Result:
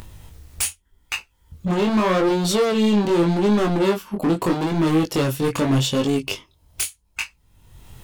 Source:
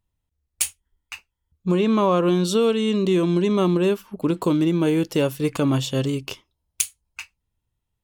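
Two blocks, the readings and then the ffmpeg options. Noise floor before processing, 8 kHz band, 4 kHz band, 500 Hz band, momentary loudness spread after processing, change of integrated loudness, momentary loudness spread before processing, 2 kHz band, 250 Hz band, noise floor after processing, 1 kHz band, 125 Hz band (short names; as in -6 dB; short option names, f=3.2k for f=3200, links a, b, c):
-80 dBFS, +0.5 dB, +3.0 dB, +0.5 dB, 12 LU, +0.5 dB, 20 LU, +5.0 dB, +1.0 dB, -63 dBFS, +3.0 dB, +1.0 dB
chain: -af "acompressor=mode=upward:threshold=-22dB:ratio=2.5,volume=22dB,asoftclip=hard,volume=-22dB,flanger=delay=18.5:depth=5.9:speed=0.82,volume=8.5dB"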